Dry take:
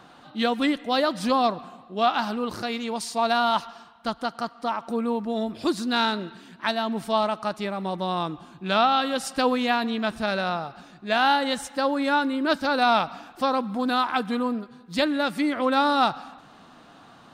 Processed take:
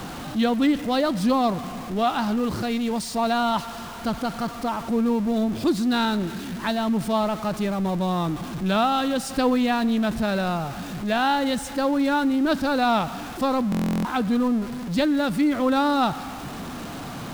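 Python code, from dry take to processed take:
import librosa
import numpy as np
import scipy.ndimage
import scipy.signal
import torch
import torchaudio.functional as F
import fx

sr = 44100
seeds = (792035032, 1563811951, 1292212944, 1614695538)

y = x + 0.5 * 10.0 ** (-29.5 / 20.0) * np.sign(x)
y = fx.low_shelf(y, sr, hz=330.0, db=11.5)
y = fx.buffer_glitch(y, sr, at_s=(13.7,), block=1024, repeats=14)
y = F.gain(torch.from_numpy(y), -4.0).numpy()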